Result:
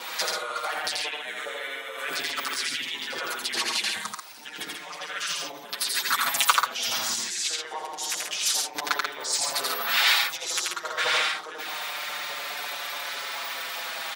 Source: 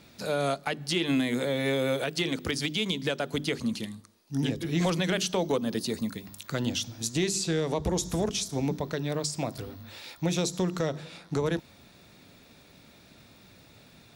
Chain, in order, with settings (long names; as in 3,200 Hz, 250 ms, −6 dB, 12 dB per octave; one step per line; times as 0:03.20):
in parallel at −3 dB: brickwall limiter −28 dBFS, peak gain reduction 9.5 dB
on the sum: compressor whose output falls as the input rises −37 dBFS, ratio −1
pitch vibrato 0.73 Hz 6.7 cents
auto-filter high-pass saw up 4.8 Hz 760–2,000 Hz
pitch-shifted copies added −3 semitones −3 dB
on a send: loudspeakers that aren't time-aligned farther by 29 metres −2 dB, 47 metres −5 dB
on the sum: barber-pole flanger 5.8 ms −0.28 Hz
level +8.5 dB